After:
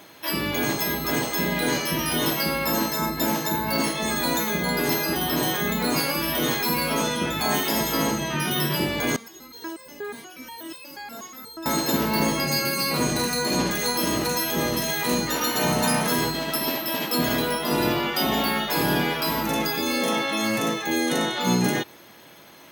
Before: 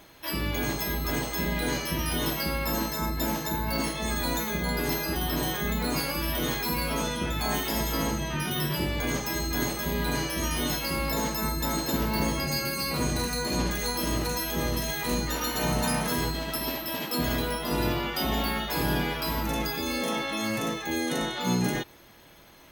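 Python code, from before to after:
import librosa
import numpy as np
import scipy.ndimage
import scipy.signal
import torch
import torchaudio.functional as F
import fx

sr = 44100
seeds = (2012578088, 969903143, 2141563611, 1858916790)

y = scipy.signal.sosfilt(scipy.signal.butter(2, 150.0, 'highpass', fs=sr, output='sos'), x)
y = fx.resonator_held(y, sr, hz=8.3, low_hz=230.0, high_hz=520.0, at=(9.16, 11.66))
y = y * 10.0 ** (5.5 / 20.0)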